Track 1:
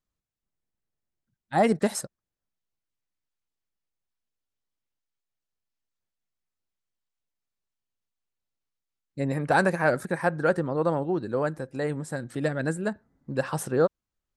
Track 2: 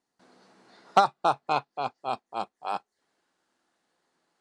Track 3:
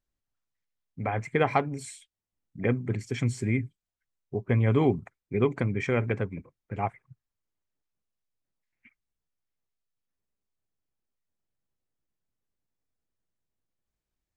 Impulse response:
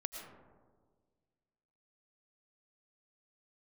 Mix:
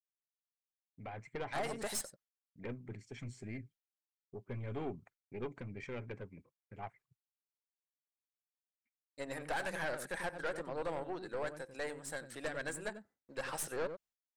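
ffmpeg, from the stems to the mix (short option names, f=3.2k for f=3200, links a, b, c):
-filter_complex "[0:a]equalizer=f=1.1k:t=o:w=0.77:g=-6,asoftclip=type=tanh:threshold=-17.5dB,volume=0.5dB,asplit=2[a][b];[b]volume=-19dB[c];[2:a]lowpass=8.6k,volume=-12.5dB[d];[a]highpass=720,acompressor=threshold=-28dB:ratio=6,volume=0dB[e];[c]aecho=0:1:93:1[f];[d][e][f]amix=inputs=3:normalize=0,agate=range=-33dB:threshold=-56dB:ratio=3:detection=peak,lowshelf=f=150:g=-4,aeval=exprs='(tanh(39.8*val(0)+0.55)-tanh(0.55))/39.8':c=same"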